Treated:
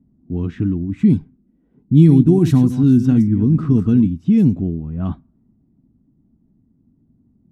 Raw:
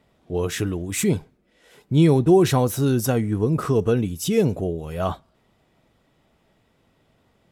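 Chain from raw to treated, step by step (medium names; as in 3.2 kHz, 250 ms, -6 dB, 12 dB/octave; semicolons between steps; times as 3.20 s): 1.94–4.07 s: chunks repeated in reverse 149 ms, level -11 dB; level-controlled noise filter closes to 560 Hz, open at -13.5 dBFS; resonant low shelf 360 Hz +12 dB, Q 3; trim -7.5 dB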